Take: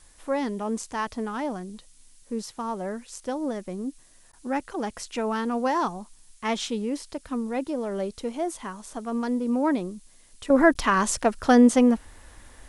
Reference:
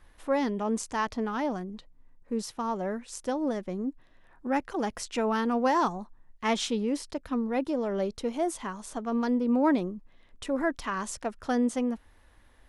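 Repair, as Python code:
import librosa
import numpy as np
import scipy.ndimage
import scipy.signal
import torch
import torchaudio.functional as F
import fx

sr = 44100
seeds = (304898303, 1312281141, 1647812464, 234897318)

y = fx.fix_interpolate(x, sr, at_s=(4.32, 10.74), length_ms=10.0)
y = fx.noise_reduce(y, sr, print_start_s=3.92, print_end_s=4.42, reduce_db=6.0)
y = fx.gain(y, sr, db=fx.steps((0.0, 0.0), (10.5, -10.5)))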